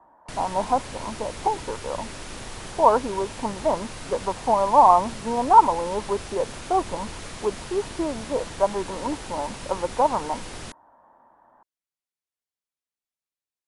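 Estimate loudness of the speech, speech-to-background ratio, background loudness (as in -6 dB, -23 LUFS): -23.5 LUFS, 13.5 dB, -37.0 LUFS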